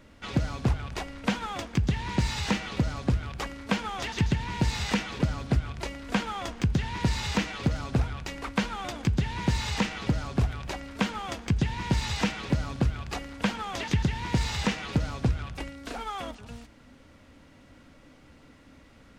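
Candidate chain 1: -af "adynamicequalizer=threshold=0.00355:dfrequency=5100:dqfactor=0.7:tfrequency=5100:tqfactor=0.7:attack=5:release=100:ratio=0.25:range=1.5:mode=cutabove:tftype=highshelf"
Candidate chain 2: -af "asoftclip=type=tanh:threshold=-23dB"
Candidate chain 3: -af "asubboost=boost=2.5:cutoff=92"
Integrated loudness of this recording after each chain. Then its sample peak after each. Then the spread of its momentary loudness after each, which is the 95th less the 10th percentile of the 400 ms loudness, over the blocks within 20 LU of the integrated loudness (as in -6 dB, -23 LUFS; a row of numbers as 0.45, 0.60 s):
-30.0, -33.0, -28.5 LUFS; -12.5, -23.0, -9.5 dBFS; 8, 6, 9 LU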